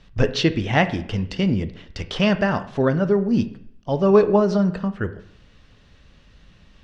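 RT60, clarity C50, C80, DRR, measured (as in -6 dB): 0.65 s, 14.0 dB, 17.0 dB, 10.5 dB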